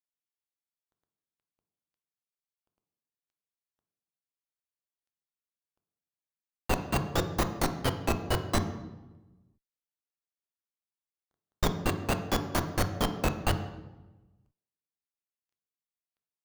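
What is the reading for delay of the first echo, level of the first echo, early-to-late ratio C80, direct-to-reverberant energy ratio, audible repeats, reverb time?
no echo audible, no echo audible, 12.0 dB, 7.0 dB, no echo audible, 1.1 s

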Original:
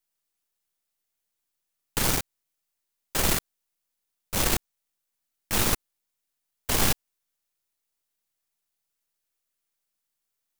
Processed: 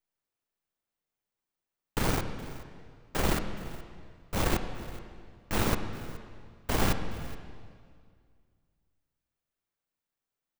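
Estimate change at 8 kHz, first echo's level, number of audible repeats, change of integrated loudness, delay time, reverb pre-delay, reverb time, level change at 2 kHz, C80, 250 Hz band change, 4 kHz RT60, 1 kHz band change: −11.5 dB, −19.0 dB, 1, −6.5 dB, 421 ms, 26 ms, 2.0 s, −3.5 dB, 9.0 dB, +1.0 dB, 1.7 s, −1.0 dB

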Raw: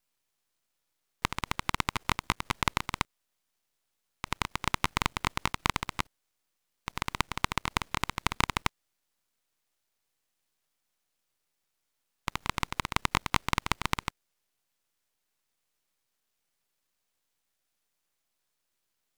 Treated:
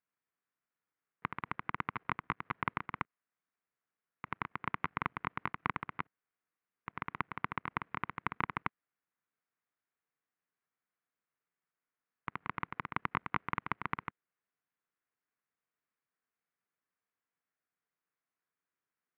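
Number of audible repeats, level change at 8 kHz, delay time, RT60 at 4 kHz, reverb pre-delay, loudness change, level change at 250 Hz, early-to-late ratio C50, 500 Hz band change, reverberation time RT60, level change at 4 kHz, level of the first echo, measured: no echo audible, below −40 dB, no echo audible, no reverb audible, no reverb audible, −7.5 dB, −7.0 dB, no reverb audible, −7.5 dB, no reverb audible, −20.5 dB, no echo audible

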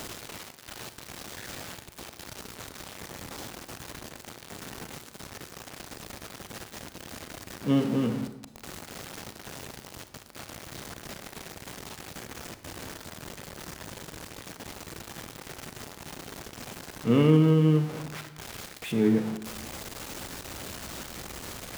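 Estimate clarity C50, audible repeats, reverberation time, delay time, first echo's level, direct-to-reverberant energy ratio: 11.0 dB, no echo audible, 0.95 s, no echo audible, no echo audible, 9.5 dB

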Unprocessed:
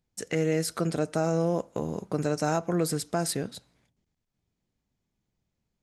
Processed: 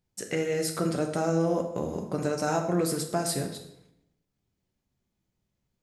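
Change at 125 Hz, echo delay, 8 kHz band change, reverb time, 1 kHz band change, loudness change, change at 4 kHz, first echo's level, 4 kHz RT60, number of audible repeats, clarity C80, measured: −1.5 dB, no echo audible, +1.0 dB, 0.80 s, +1.0 dB, 0.0 dB, +0.5 dB, no echo audible, 0.65 s, no echo audible, 11.0 dB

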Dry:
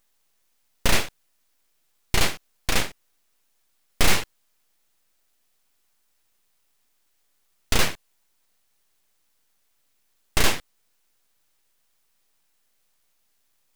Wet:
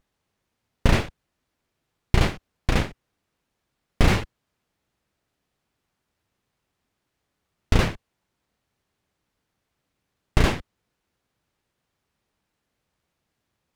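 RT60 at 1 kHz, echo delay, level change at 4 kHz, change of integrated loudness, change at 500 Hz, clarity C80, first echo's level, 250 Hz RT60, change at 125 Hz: no reverb audible, no echo audible, −6.0 dB, +0.5 dB, +2.5 dB, no reverb audible, no echo audible, no reverb audible, +9.0 dB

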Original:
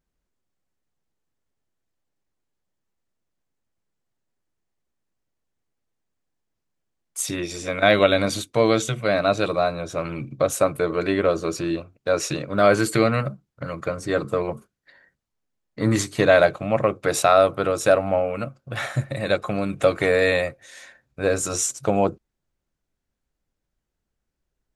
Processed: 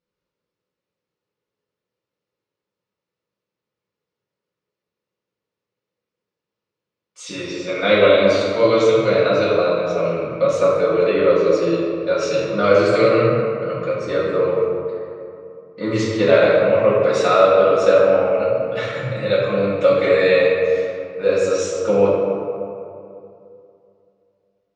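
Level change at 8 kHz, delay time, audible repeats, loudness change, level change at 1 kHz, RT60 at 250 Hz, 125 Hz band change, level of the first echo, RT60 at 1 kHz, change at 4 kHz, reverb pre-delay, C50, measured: can't be measured, no echo audible, no echo audible, +5.0 dB, +2.0 dB, 2.8 s, +0.5 dB, no echo audible, 2.5 s, +2.0 dB, 3 ms, −1.5 dB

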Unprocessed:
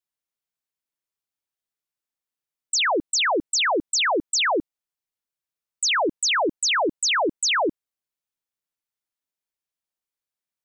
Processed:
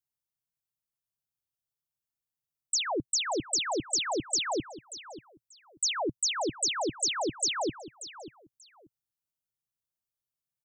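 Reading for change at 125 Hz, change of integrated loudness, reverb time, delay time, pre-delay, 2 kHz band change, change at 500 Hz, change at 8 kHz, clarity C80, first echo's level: +4.5 dB, −7.5 dB, no reverb audible, 586 ms, no reverb audible, −14.0 dB, −8.5 dB, −4.5 dB, no reverb audible, −14.5 dB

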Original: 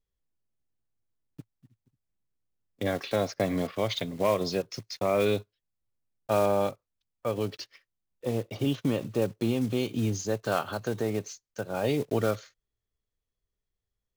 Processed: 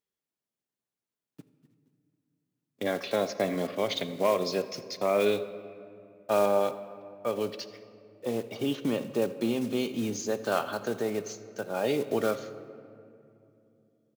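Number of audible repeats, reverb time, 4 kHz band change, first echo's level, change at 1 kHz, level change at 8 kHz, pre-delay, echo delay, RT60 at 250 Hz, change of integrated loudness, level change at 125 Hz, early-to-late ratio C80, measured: 1, 2.7 s, 0.0 dB, −21.5 dB, +0.5 dB, 0.0 dB, 5 ms, 83 ms, 3.8 s, −0.5 dB, −8.5 dB, 13.5 dB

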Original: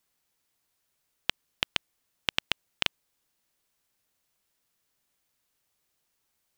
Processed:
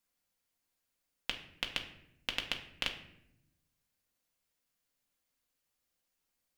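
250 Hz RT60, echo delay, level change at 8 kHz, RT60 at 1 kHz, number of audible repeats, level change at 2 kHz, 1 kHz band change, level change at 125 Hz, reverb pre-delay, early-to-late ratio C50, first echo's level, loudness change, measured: 1.3 s, no echo audible, −7.0 dB, 0.65 s, no echo audible, −6.0 dB, −7.0 dB, −6.0 dB, 4 ms, 10.0 dB, no echo audible, −6.5 dB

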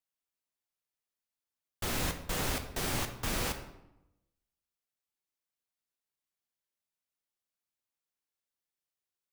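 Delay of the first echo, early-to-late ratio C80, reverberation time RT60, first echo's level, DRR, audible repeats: no echo audible, 12.0 dB, 0.90 s, no echo audible, 6.5 dB, no echo audible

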